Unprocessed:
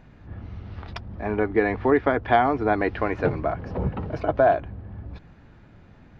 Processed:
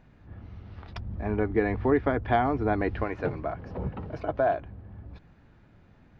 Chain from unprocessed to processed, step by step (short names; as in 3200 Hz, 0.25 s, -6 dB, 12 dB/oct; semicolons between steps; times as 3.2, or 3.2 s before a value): 0.96–3.04 low shelf 230 Hz +10 dB; gain -6.5 dB